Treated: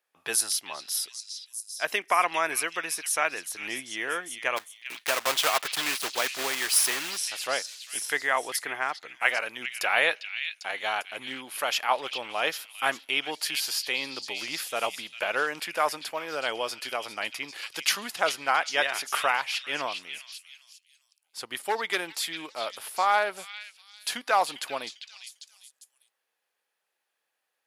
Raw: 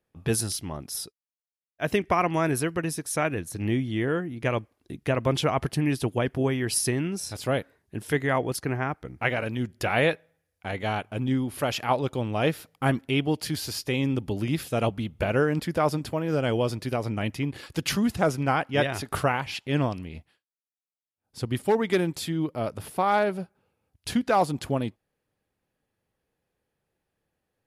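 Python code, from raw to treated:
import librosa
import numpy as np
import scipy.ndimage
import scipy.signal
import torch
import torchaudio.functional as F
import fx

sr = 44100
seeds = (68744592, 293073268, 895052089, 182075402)

y = fx.block_float(x, sr, bits=3, at=(4.56, 7.16), fade=0.02)
y = scipy.signal.sosfilt(scipy.signal.butter(2, 940.0, 'highpass', fs=sr, output='sos'), y)
y = fx.echo_stepped(y, sr, ms=399, hz=3200.0, octaves=0.7, feedback_pct=70, wet_db=-5.0)
y = F.gain(torch.from_numpy(y), 4.0).numpy()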